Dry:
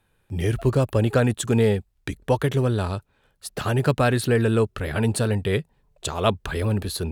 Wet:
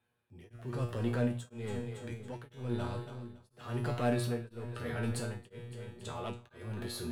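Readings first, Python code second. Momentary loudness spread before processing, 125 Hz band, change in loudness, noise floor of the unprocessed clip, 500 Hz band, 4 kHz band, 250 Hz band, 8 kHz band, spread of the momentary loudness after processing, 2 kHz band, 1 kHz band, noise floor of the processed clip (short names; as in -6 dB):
12 LU, -14.0 dB, -14.5 dB, -67 dBFS, -16.0 dB, -14.5 dB, -13.0 dB, -15.5 dB, 14 LU, -15.0 dB, -14.0 dB, -71 dBFS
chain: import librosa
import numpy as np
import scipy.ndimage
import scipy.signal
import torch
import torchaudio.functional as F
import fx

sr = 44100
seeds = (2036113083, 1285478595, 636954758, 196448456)

p1 = scipy.signal.sosfilt(scipy.signal.butter(2, 83.0, 'highpass', fs=sr, output='sos'), x)
p2 = fx.high_shelf(p1, sr, hz=5700.0, db=-6.5)
p3 = fx.hum_notches(p2, sr, base_hz=60, count=2)
p4 = fx.transient(p3, sr, attack_db=-7, sustain_db=4)
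p5 = np.clip(10.0 ** (22.5 / 20.0) * p4, -1.0, 1.0) / 10.0 ** (22.5 / 20.0)
p6 = p4 + (p5 * 10.0 ** (-4.0 / 20.0))
p7 = fx.comb_fb(p6, sr, f0_hz=120.0, decay_s=0.48, harmonics='all', damping=0.0, mix_pct=90)
p8 = fx.echo_split(p7, sr, split_hz=380.0, low_ms=523, high_ms=280, feedback_pct=52, wet_db=-11.5)
p9 = p8 * np.abs(np.cos(np.pi * 1.0 * np.arange(len(p8)) / sr))
y = p9 * 10.0 ** (-2.0 / 20.0)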